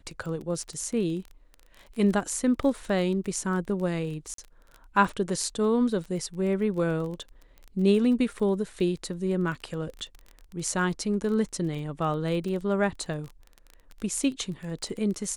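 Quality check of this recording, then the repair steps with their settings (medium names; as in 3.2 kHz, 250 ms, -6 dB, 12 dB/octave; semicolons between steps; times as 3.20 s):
crackle 21 per s -34 dBFS
4.34–4.38 s: dropout 43 ms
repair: de-click; interpolate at 4.34 s, 43 ms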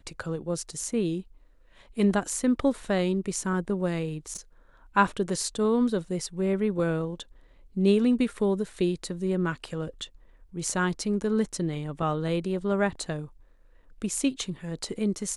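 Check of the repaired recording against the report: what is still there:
nothing left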